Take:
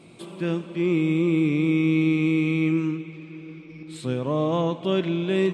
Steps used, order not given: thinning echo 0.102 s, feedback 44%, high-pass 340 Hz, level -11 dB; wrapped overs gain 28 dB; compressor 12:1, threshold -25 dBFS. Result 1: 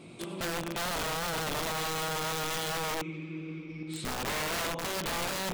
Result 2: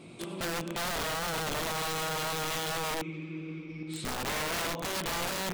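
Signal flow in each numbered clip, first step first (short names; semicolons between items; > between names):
thinning echo > compressor > wrapped overs; compressor > thinning echo > wrapped overs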